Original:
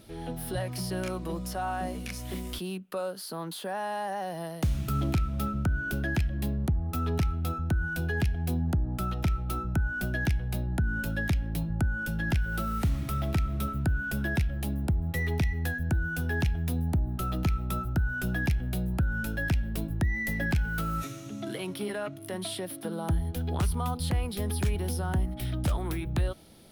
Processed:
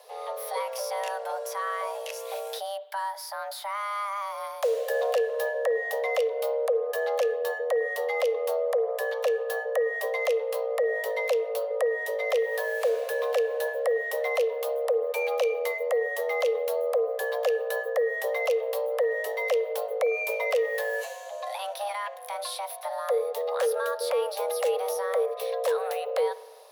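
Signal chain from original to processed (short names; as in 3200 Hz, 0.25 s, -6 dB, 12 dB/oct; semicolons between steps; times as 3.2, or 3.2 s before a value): frequency shift +400 Hz; spring tank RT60 1.3 s, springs 49 ms, chirp 45 ms, DRR 17 dB; gain +1 dB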